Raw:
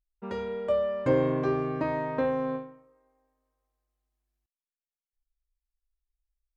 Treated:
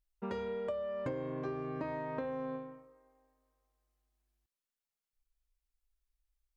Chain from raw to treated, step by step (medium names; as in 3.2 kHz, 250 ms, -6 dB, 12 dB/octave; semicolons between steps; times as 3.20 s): compression 10:1, threshold -36 dBFS, peak gain reduction 17.5 dB; trim +1 dB